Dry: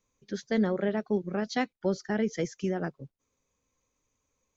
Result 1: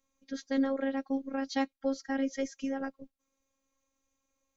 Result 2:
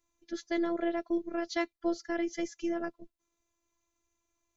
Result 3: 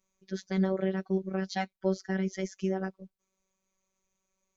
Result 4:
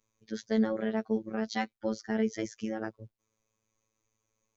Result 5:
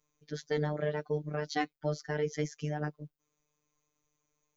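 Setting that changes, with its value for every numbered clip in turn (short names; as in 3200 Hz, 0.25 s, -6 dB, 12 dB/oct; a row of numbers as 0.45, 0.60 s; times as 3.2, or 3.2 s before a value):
robotiser, frequency: 270, 340, 190, 110, 150 Hz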